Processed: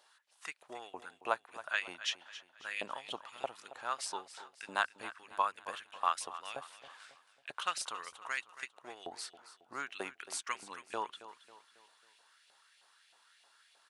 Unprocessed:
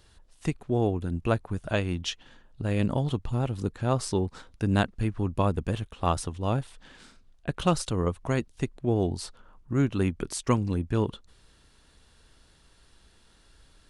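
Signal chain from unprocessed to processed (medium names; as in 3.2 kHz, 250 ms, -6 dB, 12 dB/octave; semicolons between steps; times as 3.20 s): hum notches 50/100 Hz; LFO high-pass saw up 3.2 Hz 660–2700 Hz; feedback delay 273 ms, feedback 43%, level -14.5 dB; trim -5.5 dB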